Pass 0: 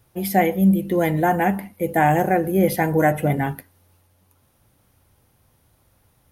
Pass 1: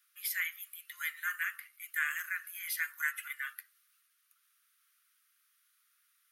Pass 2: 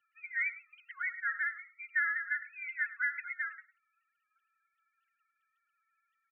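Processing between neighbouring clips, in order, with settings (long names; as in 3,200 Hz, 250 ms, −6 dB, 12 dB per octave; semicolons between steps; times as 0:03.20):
Butterworth high-pass 1,200 Hz 96 dB per octave; level −6 dB
three sine waves on the formant tracks; frequency shifter +36 Hz; single-tap delay 104 ms −16.5 dB; level +1.5 dB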